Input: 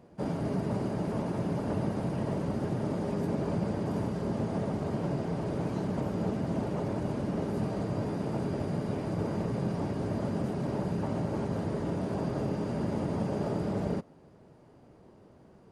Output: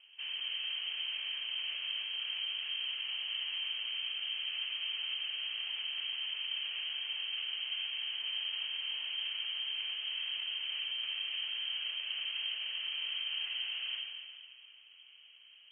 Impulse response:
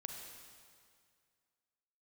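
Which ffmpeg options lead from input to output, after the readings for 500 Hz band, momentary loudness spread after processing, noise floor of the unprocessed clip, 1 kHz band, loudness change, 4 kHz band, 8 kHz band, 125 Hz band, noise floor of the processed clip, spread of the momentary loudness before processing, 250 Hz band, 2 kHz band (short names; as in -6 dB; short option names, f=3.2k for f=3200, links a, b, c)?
under -35 dB, 1 LU, -57 dBFS, -20.5 dB, -3.0 dB, +22.5 dB, under -25 dB, under -40 dB, -58 dBFS, 1 LU, under -40 dB, +7.5 dB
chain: -filter_complex "[0:a]asoftclip=type=tanh:threshold=-32.5dB[a];[1:a]atrim=start_sample=2205,asetrate=42777,aresample=44100[b];[a][b]afir=irnorm=-1:irlink=0,lowpass=f=2.8k:t=q:w=0.5098,lowpass=f=2.8k:t=q:w=0.6013,lowpass=f=2.8k:t=q:w=0.9,lowpass=f=2.8k:t=q:w=2.563,afreqshift=-3300"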